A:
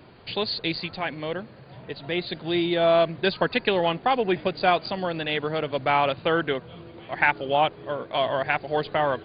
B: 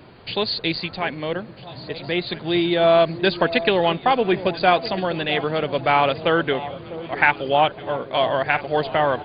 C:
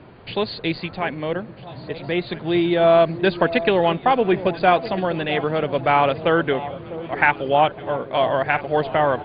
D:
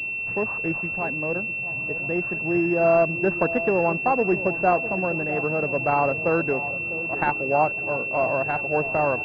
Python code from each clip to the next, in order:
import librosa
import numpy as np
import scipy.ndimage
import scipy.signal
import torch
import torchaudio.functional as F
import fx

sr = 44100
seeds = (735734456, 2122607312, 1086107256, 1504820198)

y1 = fx.echo_alternate(x, sr, ms=650, hz=910.0, feedback_pct=63, wet_db=-13)
y1 = y1 * 10.0 ** (4.0 / 20.0)
y2 = fx.air_absorb(y1, sr, metres=290.0)
y2 = y2 * 10.0 ** (2.0 / 20.0)
y3 = fx.pwm(y2, sr, carrier_hz=2700.0)
y3 = y3 * 10.0 ** (-3.5 / 20.0)